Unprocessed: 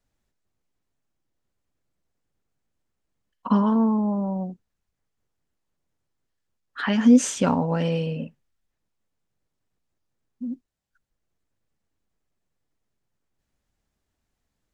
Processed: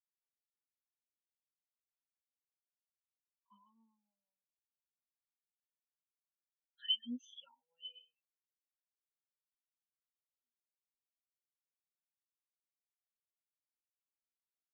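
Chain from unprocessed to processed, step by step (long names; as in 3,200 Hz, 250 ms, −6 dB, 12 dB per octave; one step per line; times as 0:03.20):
resonant band-pass 3,400 Hz, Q 3.3
every bin expanded away from the loudest bin 4 to 1
level +2 dB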